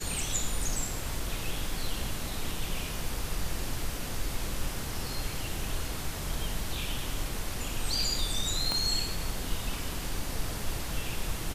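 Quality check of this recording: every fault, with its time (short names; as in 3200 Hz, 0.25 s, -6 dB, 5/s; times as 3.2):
8.72 pop -14 dBFS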